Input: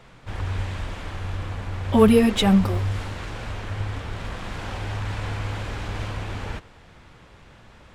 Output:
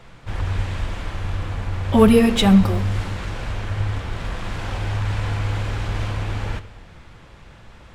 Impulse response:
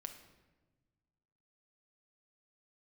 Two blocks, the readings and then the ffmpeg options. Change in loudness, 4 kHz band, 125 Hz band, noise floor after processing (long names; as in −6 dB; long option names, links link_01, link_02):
+3.0 dB, +2.5 dB, +4.5 dB, −45 dBFS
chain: -filter_complex "[0:a]lowshelf=frequency=130:gain=6.5,asplit=2[link_01][link_02];[1:a]atrim=start_sample=2205,lowshelf=frequency=320:gain=-5.5[link_03];[link_02][link_03]afir=irnorm=-1:irlink=0,volume=4dB[link_04];[link_01][link_04]amix=inputs=2:normalize=0,volume=-3dB"